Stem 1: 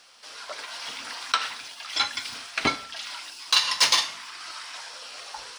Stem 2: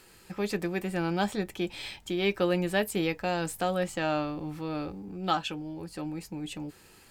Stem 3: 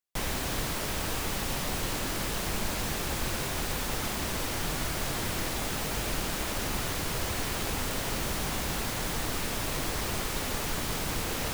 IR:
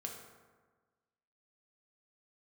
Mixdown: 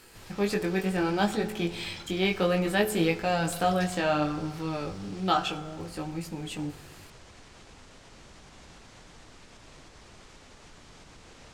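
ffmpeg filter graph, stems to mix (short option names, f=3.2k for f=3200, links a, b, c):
-filter_complex "[0:a]acompressor=threshold=-34dB:ratio=2.5,volume=-14.5dB[a];[1:a]equalizer=f=97:w=7.2:g=11.5,flanger=delay=18:depth=3.4:speed=0.64,volume=2.5dB,asplit=2[b][c];[c]volume=-3.5dB[d];[2:a]alimiter=level_in=5dB:limit=-24dB:level=0:latency=1:release=475,volume=-5dB,lowpass=f=7.9k:w=0.5412,lowpass=f=7.9k:w=1.3066,volume=-11dB[e];[3:a]atrim=start_sample=2205[f];[d][f]afir=irnorm=-1:irlink=0[g];[a][b][e][g]amix=inputs=4:normalize=0"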